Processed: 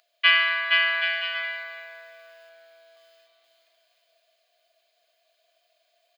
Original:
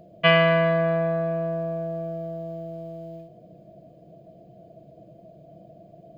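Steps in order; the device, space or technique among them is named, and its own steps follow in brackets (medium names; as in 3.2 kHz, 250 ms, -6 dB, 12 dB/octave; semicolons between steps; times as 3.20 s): 2.49–2.97 s: steep low-pass 4.4 kHz 48 dB/octave; headphones lying on a table (high-pass 1.4 kHz 24 dB/octave; peaking EQ 4.1 kHz +5.5 dB 0.5 oct); bouncing-ball echo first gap 470 ms, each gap 0.65×, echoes 5; trim +3.5 dB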